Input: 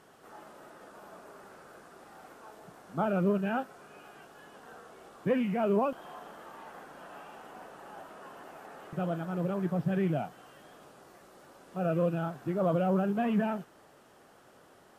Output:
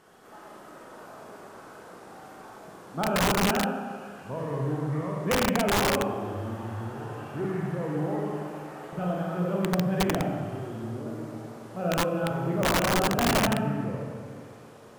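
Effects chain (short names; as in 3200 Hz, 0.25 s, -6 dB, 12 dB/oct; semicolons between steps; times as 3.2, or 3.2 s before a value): Schroeder reverb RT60 1.7 s, combs from 30 ms, DRR -2.5 dB; echoes that change speed 0.319 s, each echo -5 st, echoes 2, each echo -6 dB; wrapped overs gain 17.5 dB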